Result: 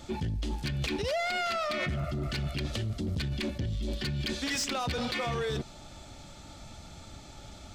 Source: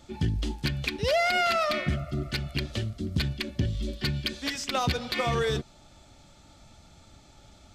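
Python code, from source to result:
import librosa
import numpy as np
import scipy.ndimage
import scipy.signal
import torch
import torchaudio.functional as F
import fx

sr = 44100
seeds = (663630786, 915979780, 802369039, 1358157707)

p1 = fx.over_compress(x, sr, threshold_db=-34.0, ratio=-0.5)
p2 = x + (p1 * 10.0 ** (2.0 / 20.0))
p3 = 10.0 ** (-20.5 / 20.0) * np.tanh(p2 / 10.0 ** (-20.5 / 20.0))
y = p3 * 10.0 ** (-4.5 / 20.0)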